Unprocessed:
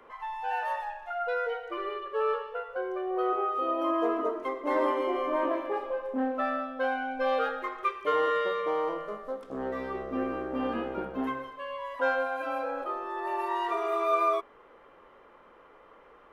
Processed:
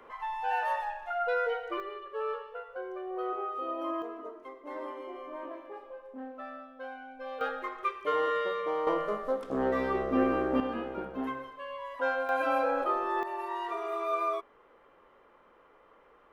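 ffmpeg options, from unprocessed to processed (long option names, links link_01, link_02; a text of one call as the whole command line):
ffmpeg -i in.wav -af "asetnsamples=nb_out_samples=441:pad=0,asendcmd='1.8 volume volume -6dB;4.02 volume volume -13dB;7.41 volume volume -2.5dB;8.87 volume volume 5dB;10.6 volume volume -3dB;12.29 volume volume 4.5dB;13.23 volume volume -5dB',volume=1dB" out.wav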